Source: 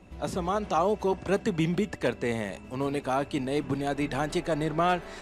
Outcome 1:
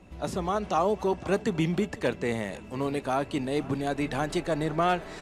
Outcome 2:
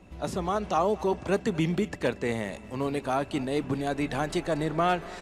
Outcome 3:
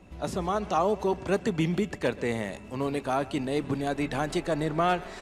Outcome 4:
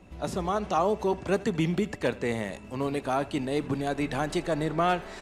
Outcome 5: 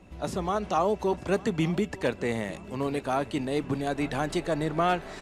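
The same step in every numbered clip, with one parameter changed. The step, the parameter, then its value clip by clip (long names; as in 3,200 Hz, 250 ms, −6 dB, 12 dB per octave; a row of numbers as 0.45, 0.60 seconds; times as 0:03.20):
repeating echo, delay time: 498, 231, 131, 80, 899 milliseconds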